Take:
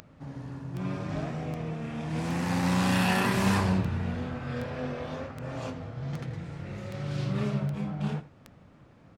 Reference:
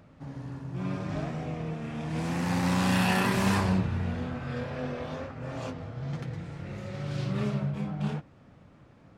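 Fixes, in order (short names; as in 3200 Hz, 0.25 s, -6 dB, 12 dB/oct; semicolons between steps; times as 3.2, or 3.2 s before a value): de-click; inverse comb 83 ms -16 dB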